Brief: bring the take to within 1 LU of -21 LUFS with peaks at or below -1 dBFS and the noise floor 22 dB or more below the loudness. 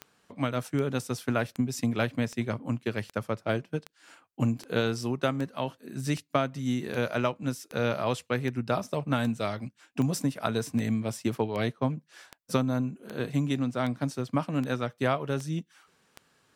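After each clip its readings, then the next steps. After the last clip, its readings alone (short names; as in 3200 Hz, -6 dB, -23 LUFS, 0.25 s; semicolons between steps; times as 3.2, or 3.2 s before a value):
clicks 22; loudness -30.5 LUFS; peak -8.5 dBFS; loudness target -21.0 LUFS
-> de-click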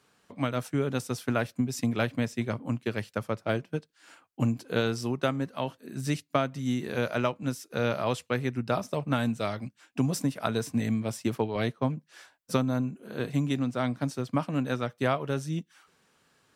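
clicks 0; loudness -30.5 LUFS; peak -8.5 dBFS; loudness target -21.0 LUFS
-> gain +9.5 dB; limiter -1 dBFS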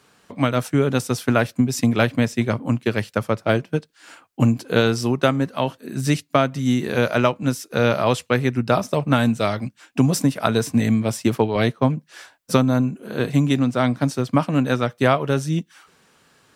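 loudness -21.0 LUFS; peak -1.0 dBFS; noise floor -60 dBFS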